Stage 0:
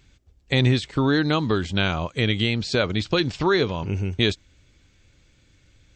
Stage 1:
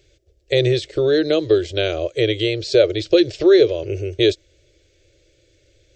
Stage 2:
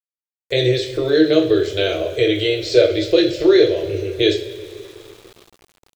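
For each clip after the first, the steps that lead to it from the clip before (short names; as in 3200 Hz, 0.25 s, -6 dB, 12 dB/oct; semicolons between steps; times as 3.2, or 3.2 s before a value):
EQ curve 130 Hz 0 dB, 230 Hz -29 dB, 330 Hz +12 dB, 600 Hz +14 dB, 910 Hz -15 dB, 1700 Hz 0 dB, 2900 Hz +3 dB, 5500 Hz +6 dB, 8700 Hz +2 dB; gain -2.5 dB
two-slope reverb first 0.37 s, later 4 s, from -21 dB, DRR -1 dB; sample gate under -39.5 dBFS; gain -1.5 dB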